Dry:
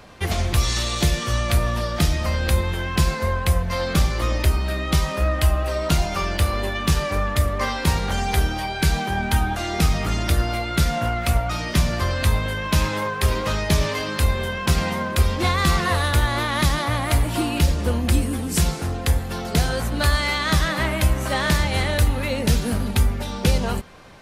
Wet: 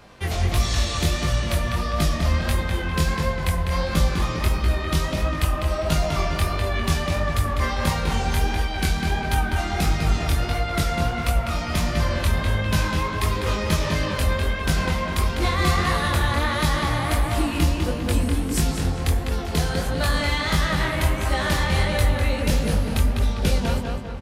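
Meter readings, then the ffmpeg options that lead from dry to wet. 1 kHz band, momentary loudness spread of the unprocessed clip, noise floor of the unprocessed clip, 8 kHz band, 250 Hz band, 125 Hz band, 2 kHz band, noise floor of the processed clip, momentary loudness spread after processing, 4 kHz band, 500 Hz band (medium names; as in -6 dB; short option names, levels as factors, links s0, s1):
-1.0 dB, 3 LU, -29 dBFS, -2.5 dB, -1.0 dB, -1.0 dB, -1.0 dB, -28 dBFS, 3 LU, -2.0 dB, -1.0 dB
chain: -filter_complex "[0:a]asplit=2[s0][s1];[s1]adelay=201,lowpass=f=3900:p=1,volume=0.708,asplit=2[s2][s3];[s3]adelay=201,lowpass=f=3900:p=1,volume=0.53,asplit=2[s4][s5];[s5]adelay=201,lowpass=f=3900:p=1,volume=0.53,asplit=2[s6][s7];[s7]adelay=201,lowpass=f=3900:p=1,volume=0.53,asplit=2[s8][s9];[s9]adelay=201,lowpass=f=3900:p=1,volume=0.53,asplit=2[s10][s11];[s11]adelay=201,lowpass=f=3900:p=1,volume=0.53,asplit=2[s12][s13];[s13]adelay=201,lowpass=f=3900:p=1,volume=0.53[s14];[s0][s2][s4][s6][s8][s10][s12][s14]amix=inputs=8:normalize=0,flanger=delay=18.5:depth=6.4:speed=1.5"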